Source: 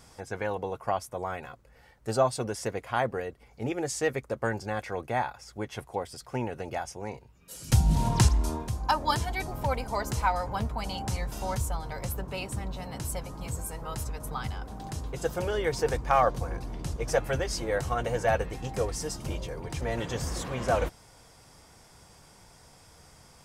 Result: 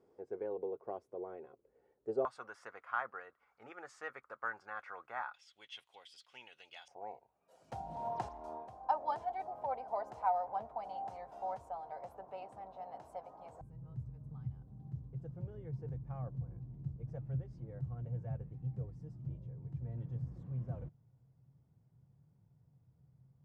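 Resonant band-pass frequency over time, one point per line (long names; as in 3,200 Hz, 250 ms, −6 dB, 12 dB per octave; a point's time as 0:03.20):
resonant band-pass, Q 4.8
400 Hz
from 0:02.25 1,300 Hz
from 0:05.34 3,200 Hz
from 0:06.88 720 Hz
from 0:13.61 130 Hz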